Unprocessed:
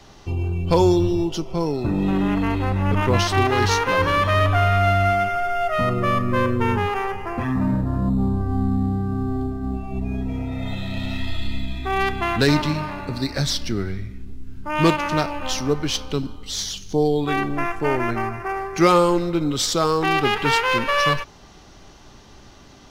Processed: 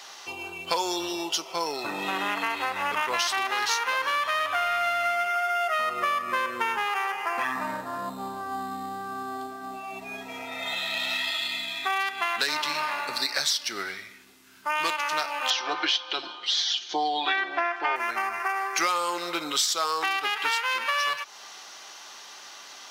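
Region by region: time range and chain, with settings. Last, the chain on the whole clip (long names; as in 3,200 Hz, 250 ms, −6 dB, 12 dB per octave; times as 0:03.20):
0:15.50–0:17.96: loudspeaker in its box 250–4,700 Hz, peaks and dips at 340 Hz +8 dB, 710 Hz +7 dB, 1,600 Hz +4 dB, 3,300 Hz +5 dB + comb filter 5.7 ms, depth 69%
whole clip: high-pass filter 1,000 Hz 12 dB per octave; high-shelf EQ 5,900 Hz +4.5 dB; downward compressor, threshold −30 dBFS; level +7 dB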